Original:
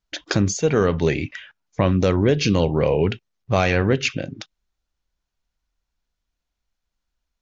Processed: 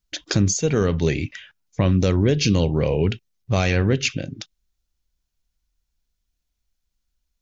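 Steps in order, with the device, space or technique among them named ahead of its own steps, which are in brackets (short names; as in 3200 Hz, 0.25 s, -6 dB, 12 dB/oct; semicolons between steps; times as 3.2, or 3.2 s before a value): smiley-face EQ (low shelf 110 Hz +4.5 dB; bell 970 Hz -6 dB 2.3 oct; high shelf 6200 Hz +8 dB)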